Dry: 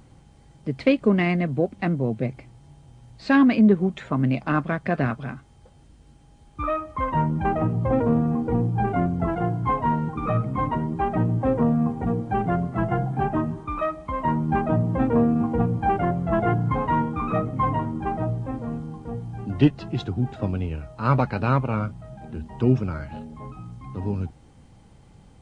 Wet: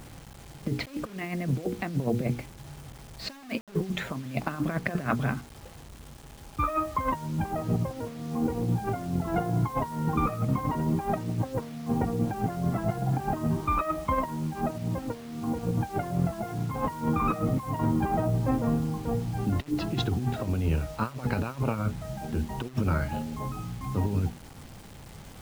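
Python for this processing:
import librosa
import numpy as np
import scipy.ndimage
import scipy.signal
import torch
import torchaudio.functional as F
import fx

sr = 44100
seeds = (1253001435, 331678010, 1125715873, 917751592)

y = fx.hum_notches(x, sr, base_hz=60, count=8)
y = fx.over_compress(y, sr, threshold_db=-28.0, ratio=-0.5)
y = fx.quant_dither(y, sr, seeds[0], bits=8, dither='none')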